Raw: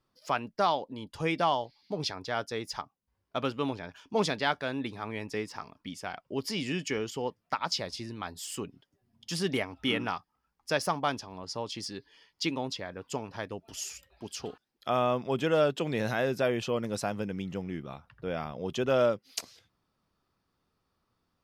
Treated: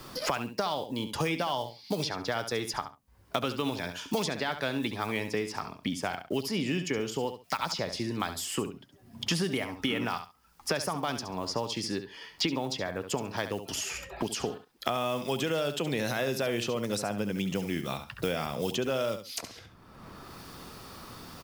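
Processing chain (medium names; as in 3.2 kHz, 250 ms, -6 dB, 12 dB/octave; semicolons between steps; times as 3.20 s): block-companded coder 7-bit; 5.29–7.44 s: treble shelf 2.4 kHz -11 dB; peak limiter -22 dBFS, peak gain reduction 7 dB; treble shelf 5.1 kHz +6 dB; feedback delay 68 ms, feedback 16%, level -11 dB; three bands compressed up and down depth 100%; trim +1.5 dB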